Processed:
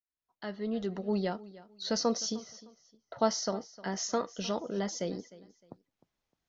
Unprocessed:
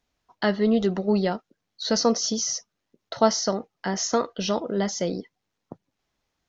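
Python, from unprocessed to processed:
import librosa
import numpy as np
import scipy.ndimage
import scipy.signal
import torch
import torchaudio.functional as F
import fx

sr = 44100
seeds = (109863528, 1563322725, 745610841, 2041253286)

y = fx.fade_in_head(x, sr, length_s=1.26)
y = fx.lowpass(y, sr, hz=fx.line((2.35, 2200.0), (3.18, 1500.0)), slope=12, at=(2.35, 3.18), fade=0.02)
y = fx.echo_feedback(y, sr, ms=306, feedback_pct=27, wet_db=-19.0)
y = F.gain(torch.from_numpy(y), -8.0).numpy()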